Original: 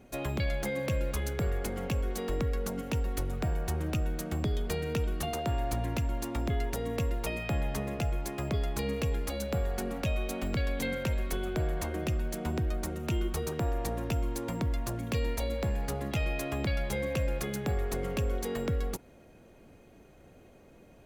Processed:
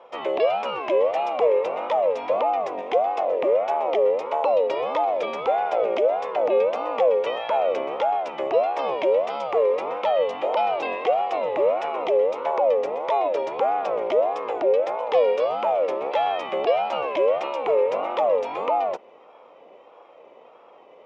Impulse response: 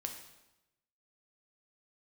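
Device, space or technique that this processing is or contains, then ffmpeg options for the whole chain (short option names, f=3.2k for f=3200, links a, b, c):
voice changer toy: -af "equalizer=f=85:w=0.6:g=4,aeval=exprs='val(0)*sin(2*PI*620*n/s+620*0.25/1.6*sin(2*PI*1.6*n/s))':c=same,highpass=420,equalizer=f=500:t=q:w=4:g=9,equalizer=f=1.6k:t=q:w=4:g=-7,equalizer=f=2.4k:t=q:w=4:g=6,equalizer=f=4.3k:t=q:w=4:g=-8,lowpass=f=4.4k:w=0.5412,lowpass=f=4.4k:w=1.3066,volume=7dB"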